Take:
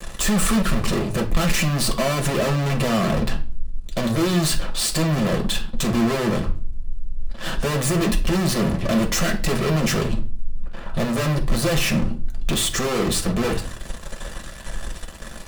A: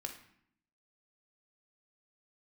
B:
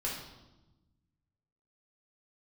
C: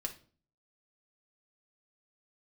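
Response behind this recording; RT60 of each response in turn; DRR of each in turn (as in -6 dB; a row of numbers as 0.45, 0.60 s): C; 0.65, 1.0, 0.45 s; 4.0, -4.5, 2.0 dB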